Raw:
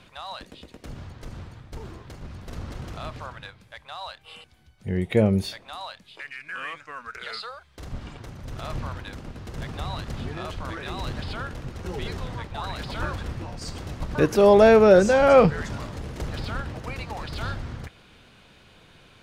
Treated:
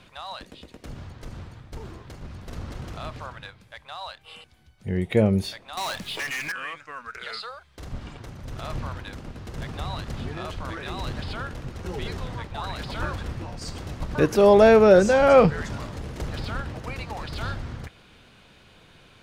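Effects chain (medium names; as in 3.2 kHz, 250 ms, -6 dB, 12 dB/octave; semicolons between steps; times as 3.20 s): 5.77–6.52 s: waveshaping leveller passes 5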